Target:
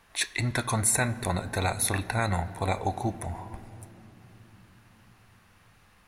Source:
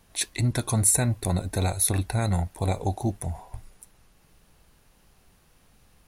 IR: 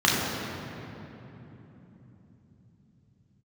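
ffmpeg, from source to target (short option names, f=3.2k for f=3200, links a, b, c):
-filter_complex "[0:a]equalizer=f=1.6k:t=o:w=2.6:g=12,asplit=2[a][b];[1:a]atrim=start_sample=2205,lowshelf=f=100:g=-12[c];[b][c]afir=irnorm=-1:irlink=0,volume=-31.5dB[d];[a][d]amix=inputs=2:normalize=0,volume=-5.5dB"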